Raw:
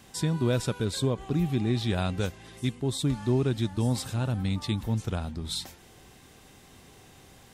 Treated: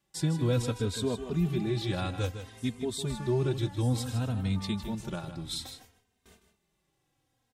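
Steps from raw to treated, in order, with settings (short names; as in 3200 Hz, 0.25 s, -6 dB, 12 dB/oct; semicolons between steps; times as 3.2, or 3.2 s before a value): gate with hold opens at -41 dBFS; echo 0.156 s -10 dB; endless flanger 3 ms -0.59 Hz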